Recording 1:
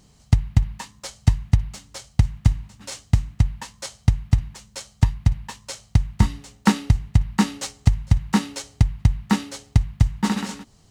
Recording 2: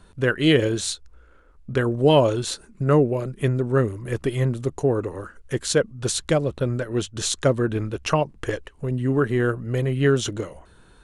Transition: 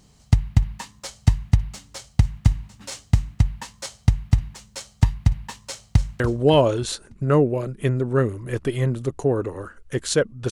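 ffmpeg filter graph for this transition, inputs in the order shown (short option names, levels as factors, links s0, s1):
-filter_complex "[0:a]apad=whole_dur=10.51,atrim=end=10.51,atrim=end=6.202[s0];[1:a]atrim=start=1.788:end=6.1[s1];[s0][s1]acrossfade=d=0.004:c1=hsin:c2=hsin,asplit=2[s2][s3];[s3]afade=t=in:st=5.67:d=0.01,afade=t=out:st=6.2:d=0.01,aecho=0:1:290|580|870|1160:0.237137|0.106712|0.0480203|0.0216091[s4];[s2][s4]amix=inputs=2:normalize=0"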